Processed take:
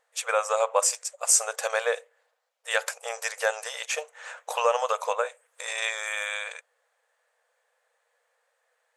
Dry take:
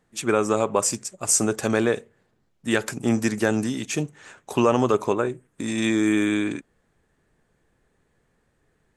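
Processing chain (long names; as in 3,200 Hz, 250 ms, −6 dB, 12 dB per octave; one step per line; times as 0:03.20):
linear-phase brick-wall high-pass 460 Hz
0:03.66–0:05.89: multiband upward and downward compressor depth 40%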